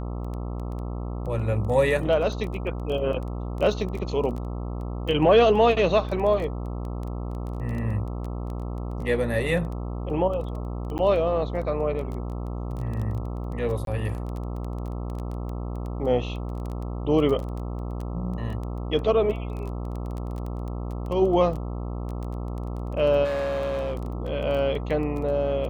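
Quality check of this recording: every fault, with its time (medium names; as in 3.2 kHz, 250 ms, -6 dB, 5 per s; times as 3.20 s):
buzz 60 Hz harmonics 22 -31 dBFS
crackle 13 per s -31 dBFS
10.98–10.99 s: dropout 9.2 ms
13.85–13.87 s: dropout 22 ms
23.24–24.30 s: clipped -24 dBFS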